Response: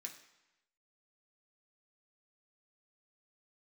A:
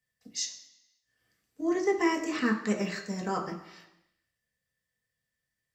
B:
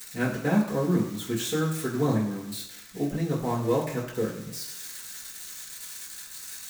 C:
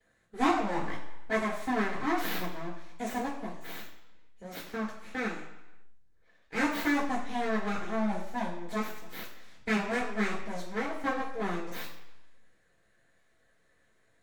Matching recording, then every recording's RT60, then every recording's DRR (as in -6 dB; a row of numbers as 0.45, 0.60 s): A; 0.95, 0.95, 0.95 s; 0.0, -9.5, -18.0 dB